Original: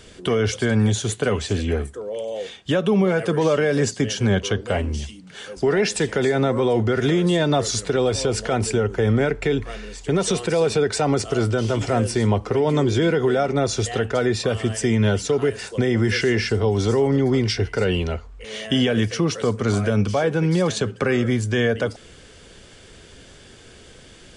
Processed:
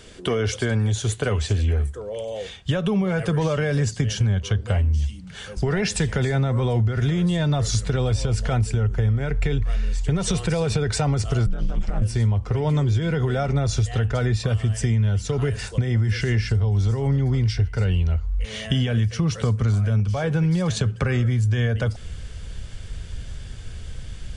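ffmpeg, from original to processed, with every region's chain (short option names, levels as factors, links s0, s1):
-filter_complex "[0:a]asettb=1/sr,asplit=3[s0][s1][s2];[s0]atrim=end=11.464[s3];[s1]atrim=start=11.46:end=12.02,asetpts=PTS-STARTPTS,afade=t=in:d=0.004:c=qsin,afade=t=out:st=0.556:d=0.004:c=qsin,lowpass=f=3300:p=1,acompressor=threshold=0.0708:ratio=2:attack=3.2:release=140:knee=1:detection=peak,aeval=exprs='val(0)*sin(2*PI*84*n/s)':c=same[s4];[s2]atrim=start=12.016[s5];[s3][s4]acrossfade=d=0.004:c1=hsin:c2=qsin[s6];[s6][s5]acrossfade=d=0.004:c1=qsin:c2=hsin,asubboost=boost=12:cutoff=97,acompressor=threshold=0.126:ratio=6"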